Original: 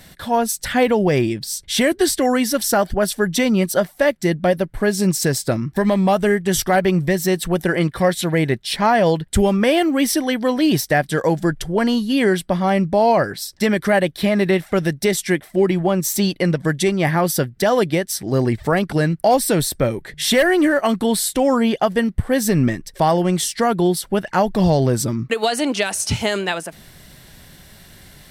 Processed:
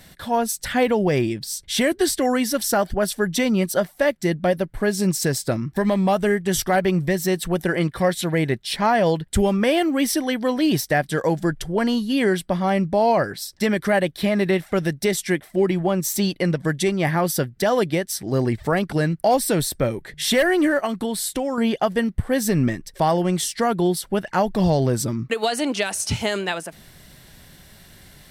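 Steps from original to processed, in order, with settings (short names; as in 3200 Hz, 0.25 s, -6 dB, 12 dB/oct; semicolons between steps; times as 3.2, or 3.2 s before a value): 20.84–21.58 compressor, threshold -18 dBFS, peak gain reduction 6.5 dB; gain -3 dB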